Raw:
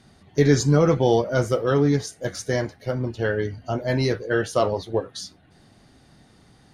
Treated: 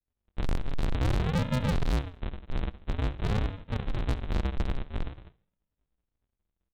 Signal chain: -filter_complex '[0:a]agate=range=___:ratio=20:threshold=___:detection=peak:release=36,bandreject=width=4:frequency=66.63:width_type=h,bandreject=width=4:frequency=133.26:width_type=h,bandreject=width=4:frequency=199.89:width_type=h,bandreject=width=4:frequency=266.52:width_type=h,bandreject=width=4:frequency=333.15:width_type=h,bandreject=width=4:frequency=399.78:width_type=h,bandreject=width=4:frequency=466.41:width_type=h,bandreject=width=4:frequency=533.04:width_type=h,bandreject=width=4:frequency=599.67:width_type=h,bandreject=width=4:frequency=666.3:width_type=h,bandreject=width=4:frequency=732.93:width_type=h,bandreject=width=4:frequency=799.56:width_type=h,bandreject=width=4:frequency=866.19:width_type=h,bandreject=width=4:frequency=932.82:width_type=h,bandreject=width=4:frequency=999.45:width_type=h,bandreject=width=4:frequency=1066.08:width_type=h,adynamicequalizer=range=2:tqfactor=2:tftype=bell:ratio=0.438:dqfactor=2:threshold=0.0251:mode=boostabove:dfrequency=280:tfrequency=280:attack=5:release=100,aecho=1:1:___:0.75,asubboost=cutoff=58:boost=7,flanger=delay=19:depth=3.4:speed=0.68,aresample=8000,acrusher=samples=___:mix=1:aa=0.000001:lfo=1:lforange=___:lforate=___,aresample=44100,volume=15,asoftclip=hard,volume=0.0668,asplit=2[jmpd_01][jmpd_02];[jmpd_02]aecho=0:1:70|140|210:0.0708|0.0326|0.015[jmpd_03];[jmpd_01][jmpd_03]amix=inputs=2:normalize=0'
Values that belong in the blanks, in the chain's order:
0.0282, 0.00355, 3.9, 41, 41, 0.49